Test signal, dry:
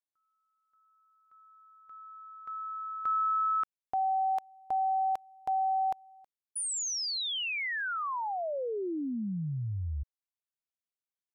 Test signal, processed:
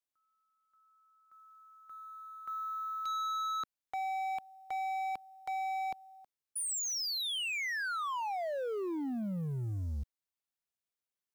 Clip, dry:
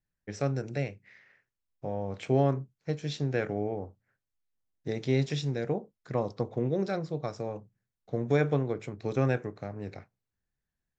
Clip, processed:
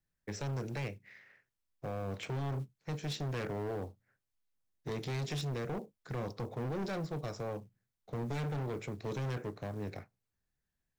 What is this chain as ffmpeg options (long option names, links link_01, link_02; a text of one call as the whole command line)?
ffmpeg -i in.wav -filter_complex "[0:a]acrossover=split=260|2000[link_01][link_02][link_03];[link_02]acompressor=threshold=-29dB:ratio=8:attack=0.4:release=63:knee=2.83:detection=peak[link_04];[link_01][link_04][link_03]amix=inputs=3:normalize=0,acrusher=bits=7:mode=log:mix=0:aa=0.000001,asoftclip=type=hard:threshold=-34dB" out.wav